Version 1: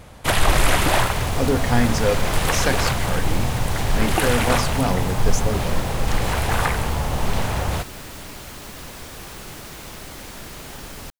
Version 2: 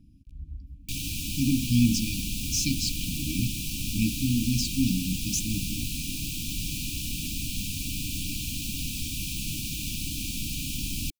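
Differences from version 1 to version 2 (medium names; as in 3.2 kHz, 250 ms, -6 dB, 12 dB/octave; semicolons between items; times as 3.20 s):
first sound: muted; second sound +6.0 dB; master: add brick-wall FIR band-stop 320–2300 Hz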